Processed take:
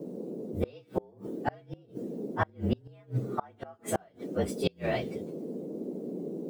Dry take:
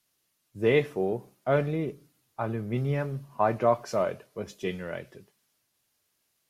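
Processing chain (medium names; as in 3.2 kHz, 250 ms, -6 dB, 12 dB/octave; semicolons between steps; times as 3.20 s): frequency axis rescaled in octaves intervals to 114%; band noise 170–480 Hz -46 dBFS; inverted gate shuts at -23 dBFS, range -34 dB; trim +8.5 dB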